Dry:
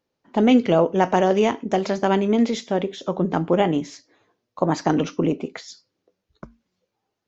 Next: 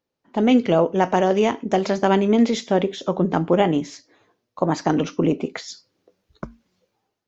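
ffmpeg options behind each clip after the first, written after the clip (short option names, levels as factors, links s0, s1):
-af "dynaudnorm=f=170:g=5:m=3.35,volume=0.668"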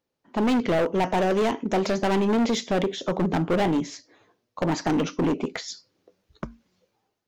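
-af "asoftclip=type=hard:threshold=0.112"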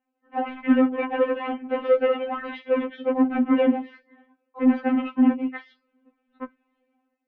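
-af "lowshelf=f=210:g=11.5,highpass=f=190:t=q:w=0.5412,highpass=f=190:t=q:w=1.307,lowpass=f=2700:t=q:w=0.5176,lowpass=f=2700:t=q:w=0.7071,lowpass=f=2700:t=q:w=1.932,afreqshift=-78,afftfilt=real='re*3.46*eq(mod(b,12),0)':imag='im*3.46*eq(mod(b,12),0)':win_size=2048:overlap=0.75,volume=1.41"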